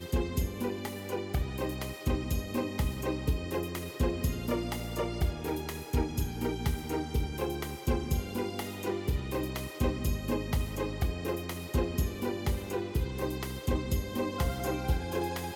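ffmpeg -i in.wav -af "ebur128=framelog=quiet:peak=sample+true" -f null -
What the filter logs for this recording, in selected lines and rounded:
Integrated loudness:
  I:         -33.4 LUFS
  Threshold: -43.4 LUFS
Loudness range:
  LRA:         0.7 LU
  Threshold: -53.4 LUFS
  LRA low:   -33.8 LUFS
  LRA high:  -33.0 LUFS
Sample peak:
  Peak:      -16.1 dBFS
True peak:
  Peak:      -16.0 dBFS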